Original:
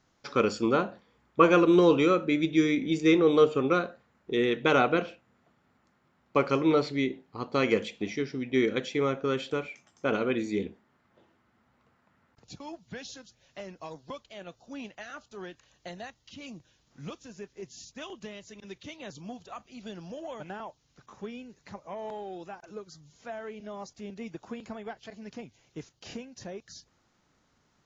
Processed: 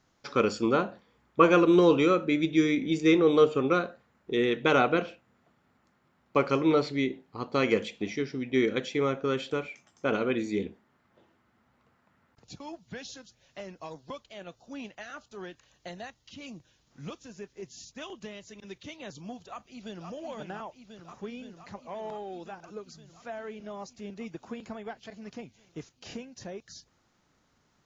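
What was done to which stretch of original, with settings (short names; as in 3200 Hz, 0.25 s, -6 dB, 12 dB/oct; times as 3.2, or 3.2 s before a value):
19.48–20.07 echo throw 0.52 s, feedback 80%, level -6 dB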